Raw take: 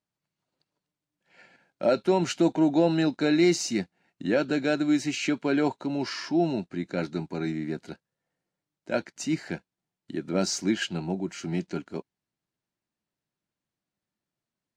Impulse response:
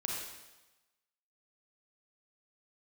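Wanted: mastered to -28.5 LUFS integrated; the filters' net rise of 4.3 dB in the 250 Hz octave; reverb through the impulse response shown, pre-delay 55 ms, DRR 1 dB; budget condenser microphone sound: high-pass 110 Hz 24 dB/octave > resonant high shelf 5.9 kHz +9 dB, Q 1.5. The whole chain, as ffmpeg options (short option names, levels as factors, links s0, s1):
-filter_complex "[0:a]equalizer=f=250:t=o:g=6,asplit=2[s0][s1];[1:a]atrim=start_sample=2205,adelay=55[s2];[s1][s2]afir=irnorm=-1:irlink=0,volume=0.631[s3];[s0][s3]amix=inputs=2:normalize=0,highpass=f=110:w=0.5412,highpass=f=110:w=1.3066,highshelf=f=5900:t=q:w=1.5:g=9,volume=0.473"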